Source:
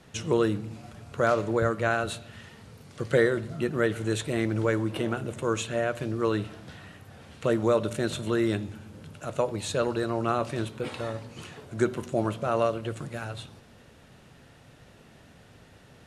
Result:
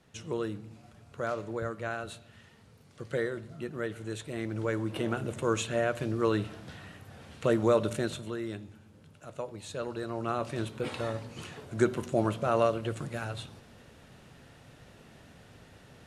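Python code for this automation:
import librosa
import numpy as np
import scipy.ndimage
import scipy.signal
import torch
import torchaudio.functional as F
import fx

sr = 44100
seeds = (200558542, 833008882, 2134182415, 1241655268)

y = fx.gain(x, sr, db=fx.line((4.25, -9.5), (5.23, -1.0), (7.94, -1.0), (8.38, -11.0), (9.61, -11.0), (10.91, -0.5)))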